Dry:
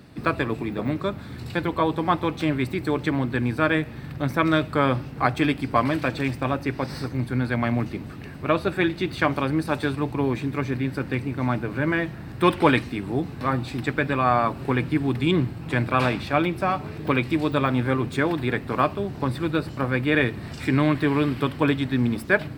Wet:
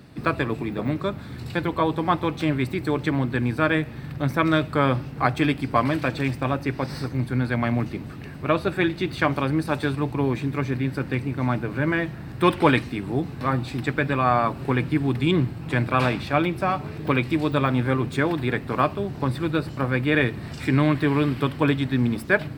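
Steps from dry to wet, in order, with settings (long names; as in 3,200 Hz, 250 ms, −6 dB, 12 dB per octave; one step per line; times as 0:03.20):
parametric band 140 Hz +3 dB 0.29 octaves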